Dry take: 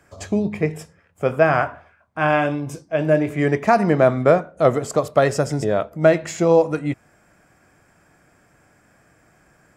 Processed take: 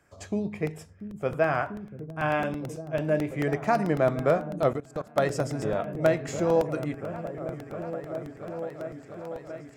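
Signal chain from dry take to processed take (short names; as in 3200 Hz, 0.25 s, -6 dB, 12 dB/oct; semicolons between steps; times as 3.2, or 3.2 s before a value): repeats that get brighter 0.69 s, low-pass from 200 Hz, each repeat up 1 oct, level -6 dB; 4.73–5.18 level quantiser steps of 21 dB; crackling interface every 0.11 s, samples 64, repeat, from 0.67; gain -8.5 dB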